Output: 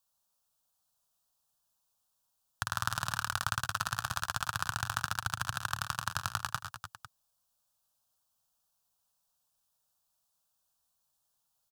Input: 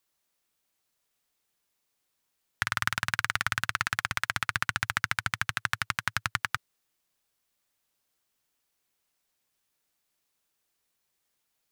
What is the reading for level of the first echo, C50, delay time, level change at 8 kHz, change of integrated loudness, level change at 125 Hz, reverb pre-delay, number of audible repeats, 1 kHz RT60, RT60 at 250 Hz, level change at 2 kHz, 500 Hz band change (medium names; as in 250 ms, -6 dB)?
-19.0 dB, no reverb, 78 ms, 0.0 dB, -4.5 dB, -0.5 dB, no reverb, 4, no reverb, no reverb, -7.5 dB, -1.5 dB